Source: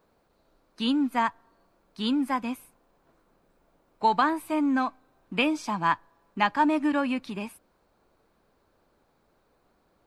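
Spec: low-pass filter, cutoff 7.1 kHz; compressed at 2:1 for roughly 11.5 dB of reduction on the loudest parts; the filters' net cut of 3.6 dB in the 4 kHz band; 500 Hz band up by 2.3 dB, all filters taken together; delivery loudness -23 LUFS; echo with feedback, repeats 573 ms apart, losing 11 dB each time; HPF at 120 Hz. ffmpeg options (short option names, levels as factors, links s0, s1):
-af "highpass=120,lowpass=7100,equalizer=f=500:t=o:g=3,equalizer=f=4000:t=o:g=-5,acompressor=threshold=0.0112:ratio=2,aecho=1:1:573|1146|1719:0.282|0.0789|0.0221,volume=5.01"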